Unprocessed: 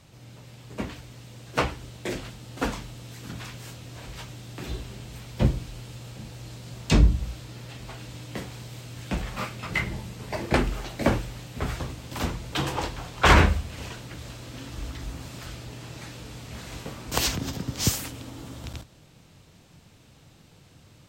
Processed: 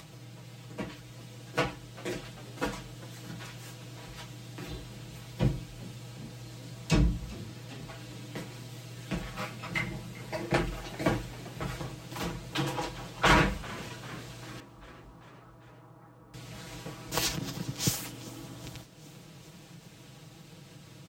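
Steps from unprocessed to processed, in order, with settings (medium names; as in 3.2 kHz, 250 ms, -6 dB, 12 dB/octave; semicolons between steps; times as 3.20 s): high-pass 49 Hz; comb 6.2 ms, depth 88%; upward compressor, threshold -34 dBFS; 14.60–16.34 s: four-pole ladder low-pass 1.3 kHz, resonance 50%; bit crusher 11-bit; on a send: frequency-shifting echo 395 ms, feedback 64%, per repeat +50 Hz, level -20.5 dB; on the sum: trim -7 dB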